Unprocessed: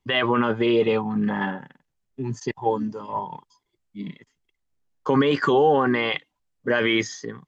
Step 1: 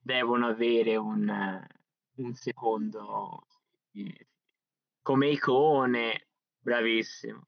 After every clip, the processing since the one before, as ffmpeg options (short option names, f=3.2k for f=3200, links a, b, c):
-af "afftfilt=real='re*between(b*sr/4096,120,6200)':imag='im*between(b*sr/4096,120,6200)':win_size=4096:overlap=0.75,volume=-5.5dB"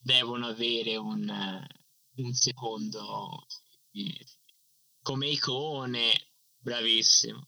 -af "equalizer=f=120:t=o:w=0.72:g=15,acompressor=threshold=-30dB:ratio=6,aexciter=amount=11.4:drive=9.4:freq=3.2k,volume=-1dB"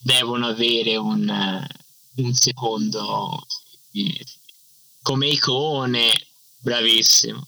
-filter_complex "[0:a]asplit=2[a][b];[b]acompressor=threshold=-35dB:ratio=5,volume=2dB[c];[a][c]amix=inputs=2:normalize=0,aeval=exprs='0.2*(abs(mod(val(0)/0.2+3,4)-2)-1)':c=same,volume=7dB"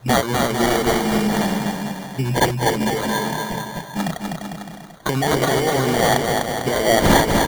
-filter_complex "[0:a]acrusher=samples=17:mix=1:aa=0.000001,asplit=2[a][b];[b]aecho=0:1:250|450|610|738|840.4:0.631|0.398|0.251|0.158|0.1[c];[a][c]amix=inputs=2:normalize=0"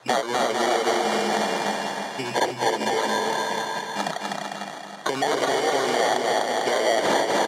-filter_complex "[0:a]highpass=470,lowpass=7.3k,acrossover=split=800|3200[a][b][c];[a]acompressor=threshold=-24dB:ratio=4[d];[b]acompressor=threshold=-31dB:ratio=4[e];[c]acompressor=threshold=-35dB:ratio=4[f];[d][e][f]amix=inputs=3:normalize=0,aecho=1:1:315|630|945|1260|1575|1890:0.376|0.184|0.0902|0.0442|0.0217|0.0106,volume=2.5dB"